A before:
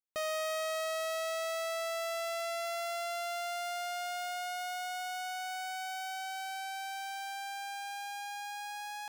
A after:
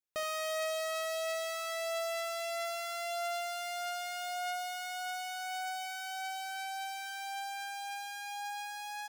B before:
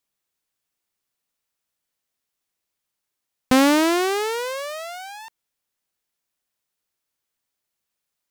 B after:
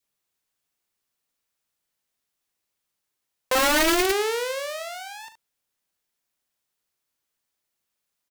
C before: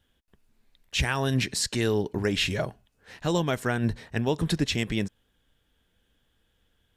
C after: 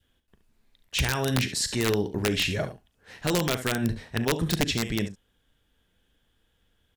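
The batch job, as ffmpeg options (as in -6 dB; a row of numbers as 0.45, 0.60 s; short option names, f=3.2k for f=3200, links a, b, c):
-af "aecho=1:1:39|71:0.211|0.266,aeval=exprs='(mod(5.62*val(0)+1,2)-1)/5.62':c=same,adynamicequalizer=threshold=0.00708:dfrequency=990:dqfactor=1.8:tfrequency=990:tqfactor=1.8:attack=5:release=100:ratio=0.375:range=3:mode=cutabove:tftype=bell"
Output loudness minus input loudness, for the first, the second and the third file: 0.0, -2.0, +0.5 LU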